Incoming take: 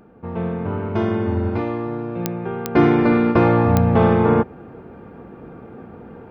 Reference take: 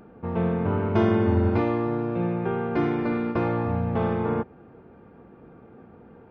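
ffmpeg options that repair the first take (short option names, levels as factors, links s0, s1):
-af "adeclick=t=4,asetnsamples=n=441:p=0,asendcmd='2.75 volume volume -10dB',volume=1"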